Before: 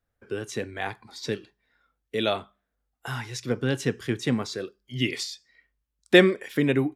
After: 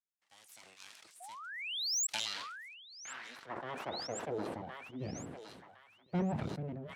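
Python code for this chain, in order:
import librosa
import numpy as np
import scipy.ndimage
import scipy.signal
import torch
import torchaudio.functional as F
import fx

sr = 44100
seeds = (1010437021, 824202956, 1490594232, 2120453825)

p1 = fx.fade_out_tail(x, sr, length_s=0.57)
p2 = np.abs(p1)
p3 = fx.spec_paint(p2, sr, seeds[0], shape='rise', start_s=1.2, length_s=0.87, low_hz=680.0, high_hz=7900.0, level_db=-21.0)
p4 = fx.filter_sweep_bandpass(p3, sr, from_hz=7700.0, to_hz=220.0, start_s=1.9, end_s=5.1, q=1.2)
p5 = p4 + fx.echo_thinned(p4, sr, ms=1063, feedback_pct=45, hz=1100.0, wet_db=-19, dry=0)
p6 = 10.0 ** (-21.0 / 20.0) * np.tanh(p5 / 10.0 ** (-21.0 / 20.0))
p7 = scipy.signal.sosfilt(scipy.signal.butter(2, 83.0, 'highpass', fs=sr, output='sos'), p6)
p8 = fx.low_shelf(p7, sr, hz=390.0, db=5.5)
p9 = fx.sustainer(p8, sr, db_per_s=29.0)
y = p9 * librosa.db_to_amplitude(-8.0)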